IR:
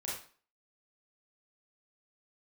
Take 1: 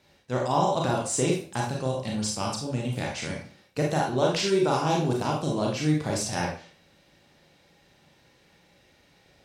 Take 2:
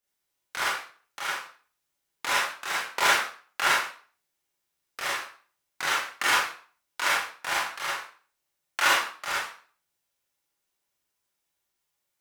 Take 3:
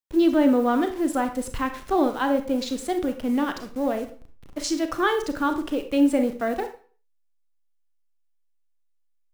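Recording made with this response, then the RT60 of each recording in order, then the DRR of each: 2; 0.40, 0.40, 0.40 seconds; −2.0, −6.5, 7.0 decibels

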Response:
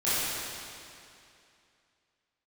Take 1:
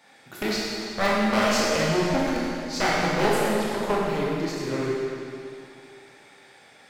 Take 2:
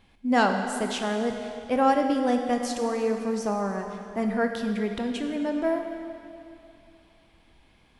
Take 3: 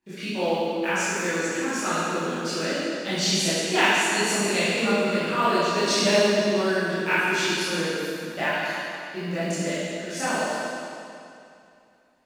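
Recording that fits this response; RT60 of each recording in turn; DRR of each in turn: 3; 2.6, 2.6, 2.6 seconds; −6.0, 4.0, −14.0 decibels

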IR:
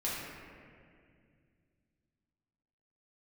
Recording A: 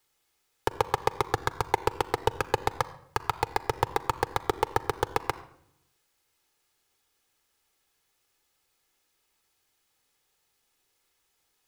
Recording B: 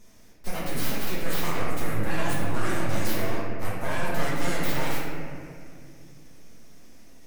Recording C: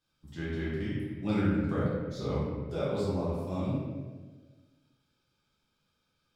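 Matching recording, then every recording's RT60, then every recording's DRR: B; non-exponential decay, 2.2 s, 1.4 s; 14.5, −8.0, −9.5 decibels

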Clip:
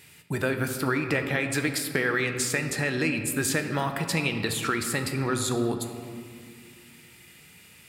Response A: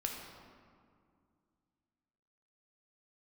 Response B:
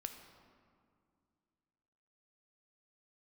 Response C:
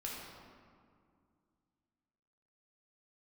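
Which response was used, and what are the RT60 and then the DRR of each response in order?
B; 2.2, 2.3, 2.2 seconds; 0.0, 5.5, −4.5 decibels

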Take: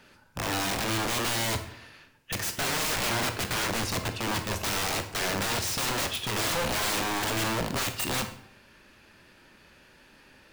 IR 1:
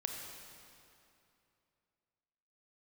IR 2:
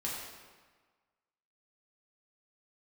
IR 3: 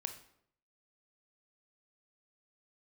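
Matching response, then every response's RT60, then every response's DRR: 3; 2.7, 1.4, 0.70 seconds; 2.0, −5.5, 6.5 decibels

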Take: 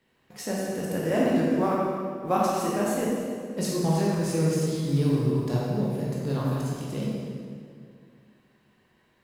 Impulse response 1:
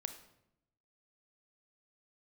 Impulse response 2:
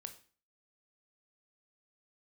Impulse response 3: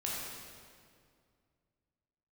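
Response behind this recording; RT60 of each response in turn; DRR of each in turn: 3; 0.80, 0.40, 2.2 seconds; 8.0, 7.0, −5.5 decibels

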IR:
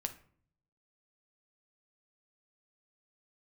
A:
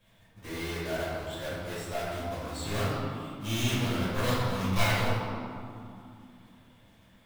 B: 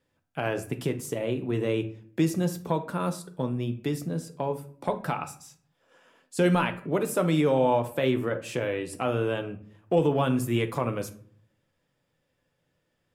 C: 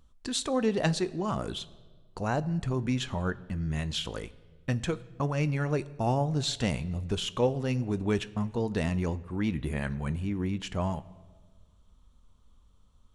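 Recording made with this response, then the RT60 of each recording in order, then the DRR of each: B; 2.6, 0.55, 1.5 seconds; −10.5, 6.5, 15.0 decibels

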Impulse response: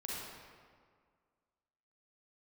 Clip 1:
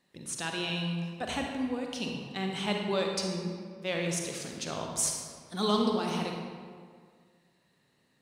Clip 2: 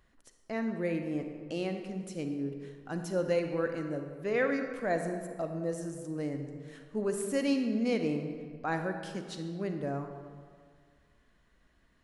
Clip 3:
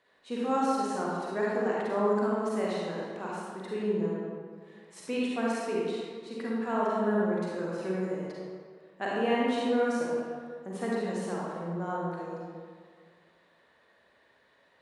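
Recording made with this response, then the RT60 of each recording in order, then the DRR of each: 3; 1.9, 1.9, 1.9 seconds; 1.0, 5.5, −6.0 decibels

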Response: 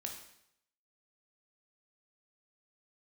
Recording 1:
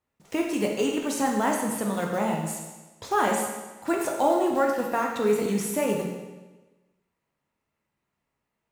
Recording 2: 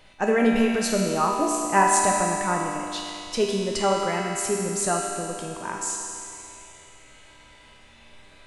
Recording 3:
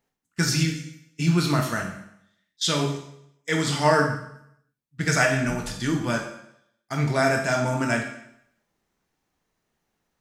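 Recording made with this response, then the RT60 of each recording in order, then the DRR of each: 3; 1.2, 2.7, 0.75 seconds; 0.0, −2.5, 1.5 decibels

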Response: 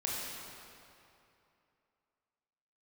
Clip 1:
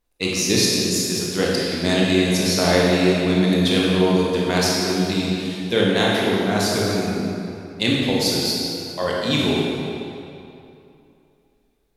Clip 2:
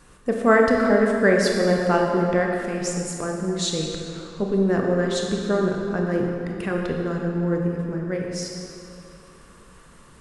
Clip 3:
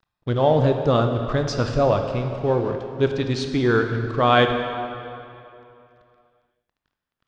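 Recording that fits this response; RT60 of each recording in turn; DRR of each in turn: 1; 2.8, 2.8, 2.7 seconds; −4.5, 0.0, 5.0 decibels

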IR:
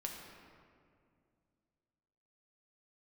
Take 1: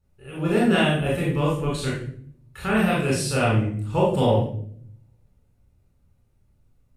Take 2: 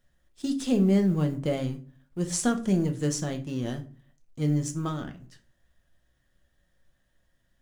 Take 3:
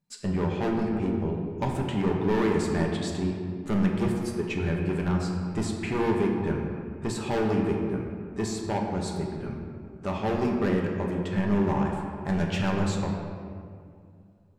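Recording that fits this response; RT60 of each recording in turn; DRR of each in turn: 3; 0.55, 0.40, 2.3 seconds; −5.0, 5.5, 0.0 decibels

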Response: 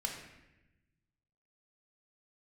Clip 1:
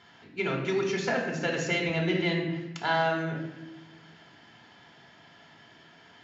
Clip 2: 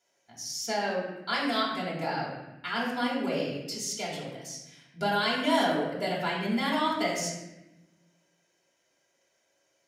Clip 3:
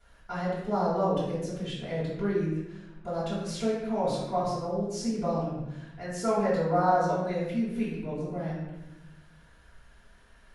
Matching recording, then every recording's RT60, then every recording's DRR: 1; 0.95, 0.95, 0.95 seconds; −0.5, −5.0, −11.5 decibels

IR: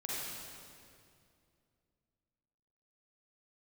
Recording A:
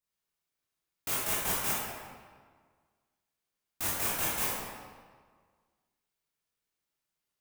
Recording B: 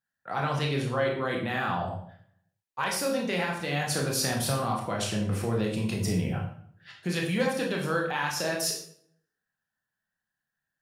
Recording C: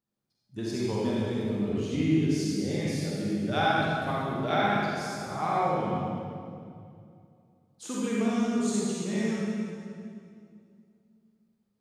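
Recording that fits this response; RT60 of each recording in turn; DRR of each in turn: C; 1.7, 0.60, 2.4 seconds; −7.5, −1.0, −7.0 decibels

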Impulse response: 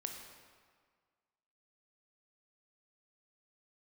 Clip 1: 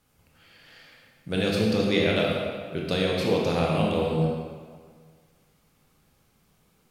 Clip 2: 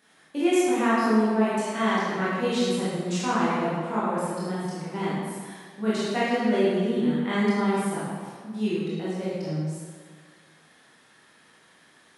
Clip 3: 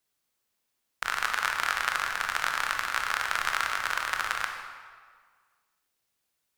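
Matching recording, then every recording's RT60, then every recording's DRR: 3; 1.7, 1.7, 1.7 seconds; −3.0, −10.0, 3.0 decibels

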